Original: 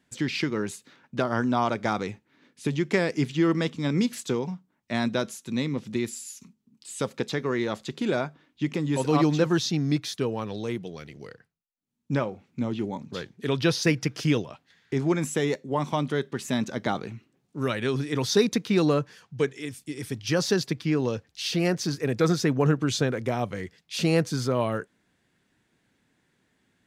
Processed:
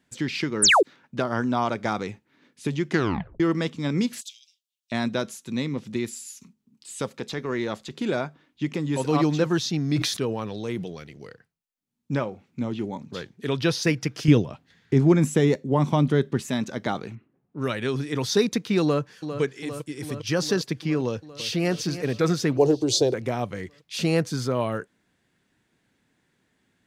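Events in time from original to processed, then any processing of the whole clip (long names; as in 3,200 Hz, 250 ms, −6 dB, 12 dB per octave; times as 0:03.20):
0:00.62–0:00.83: sound drawn into the spectrogram fall 310–11,000 Hz −16 dBFS
0:02.88: tape stop 0.52 s
0:04.21–0:04.92: Butterworth high-pass 2,900 Hz 48 dB per octave
0:07.00–0:07.96: transient designer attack −6 dB, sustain −1 dB
0:09.76–0:11.04: level that may fall only so fast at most 46 dB per second
0:14.28–0:16.42: low-shelf EQ 390 Hz +10.5 dB
0:17.15–0:17.69: low-pass that shuts in the quiet parts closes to 1,300 Hz, open at −22.5 dBFS
0:18.82–0:19.41: delay throw 400 ms, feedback 75%, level −9.5 dB
0:21.07–0:21.70: delay throw 320 ms, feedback 55%, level −12.5 dB
0:22.57–0:23.14: drawn EQ curve 120 Hz 0 dB, 200 Hz −17 dB, 330 Hz +8 dB, 600 Hz +6 dB, 870 Hz +4 dB, 1,300 Hz −19 dB, 2,400 Hz −8 dB, 4,300 Hz +9 dB, 13,000 Hz +3 dB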